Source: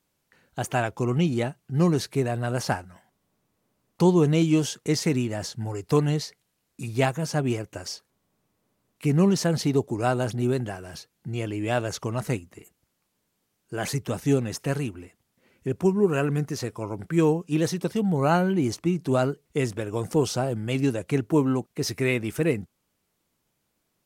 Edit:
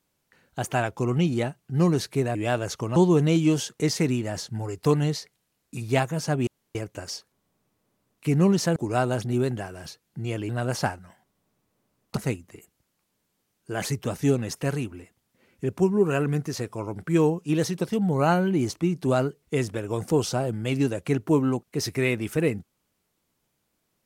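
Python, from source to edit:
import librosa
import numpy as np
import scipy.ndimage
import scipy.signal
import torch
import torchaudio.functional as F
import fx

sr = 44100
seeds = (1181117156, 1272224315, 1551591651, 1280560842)

y = fx.edit(x, sr, fx.swap(start_s=2.35, length_s=1.67, other_s=11.58, other_length_s=0.61),
    fx.insert_room_tone(at_s=7.53, length_s=0.28),
    fx.cut(start_s=9.54, length_s=0.31), tone=tone)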